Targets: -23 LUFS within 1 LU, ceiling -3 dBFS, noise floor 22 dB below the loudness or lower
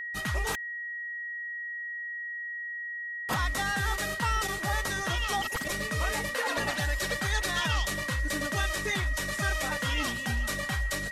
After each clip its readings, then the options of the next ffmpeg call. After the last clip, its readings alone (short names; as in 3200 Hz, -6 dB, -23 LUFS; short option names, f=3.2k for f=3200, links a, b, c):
steady tone 1900 Hz; tone level -34 dBFS; loudness -30.5 LUFS; peak -16.5 dBFS; loudness target -23.0 LUFS
-> -af "bandreject=f=1.9k:w=30"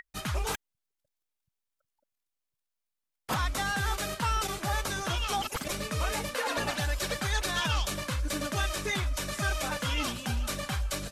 steady tone none; loudness -31.0 LUFS; peak -18.0 dBFS; loudness target -23.0 LUFS
-> -af "volume=8dB"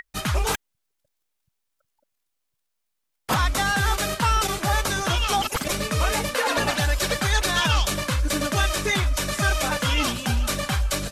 loudness -23.0 LUFS; peak -10.0 dBFS; noise floor -78 dBFS